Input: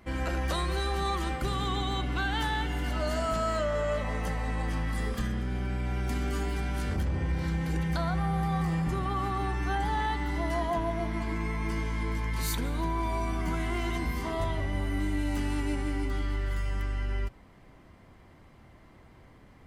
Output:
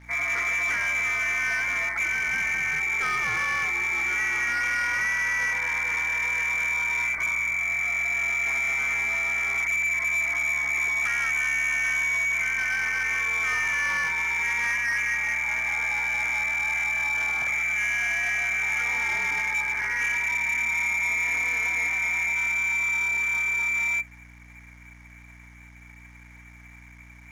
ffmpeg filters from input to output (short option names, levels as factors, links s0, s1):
-filter_complex "[0:a]lowpass=f=2800:t=q:w=0.5098,lowpass=f=2800:t=q:w=0.6013,lowpass=f=2800:t=q:w=0.9,lowpass=f=2800:t=q:w=2.563,afreqshift=-3300,asplit=2[s0][s1];[s1]aeval=exprs='0.0335*(abs(mod(val(0)/0.0335+3,4)-2)-1)':c=same,volume=0.631[s2];[s0][s2]amix=inputs=2:normalize=0,asetrate=31752,aresample=44100,aeval=exprs='sgn(val(0))*max(abs(val(0))-0.00126,0)':c=same,aeval=exprs='val(0)+0.00316*(sin(2*PI*60*n/s)+sin(2*PI*2*60*n/s)/2+sin(2*PI*3*60*n/s)/3+sin(2*PI*4*60*n/s)/4+sin(2*PI*5*60*n/s)/5)':c=same,volume=1.19"